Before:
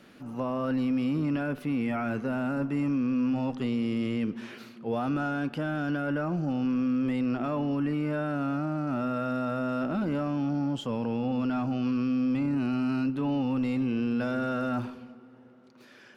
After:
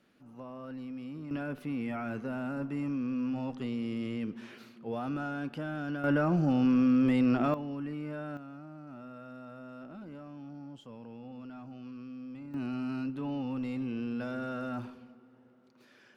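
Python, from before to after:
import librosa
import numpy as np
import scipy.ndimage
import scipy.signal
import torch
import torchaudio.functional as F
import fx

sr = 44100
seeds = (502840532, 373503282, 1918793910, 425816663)

y = fx.gain(x, sr, db=fx.steps((0.0, -14.0), (1.31, -6.0), (6.04, 2.5), (7.54, -9.0), (8.37, -17.0), (12.54, -7.0)))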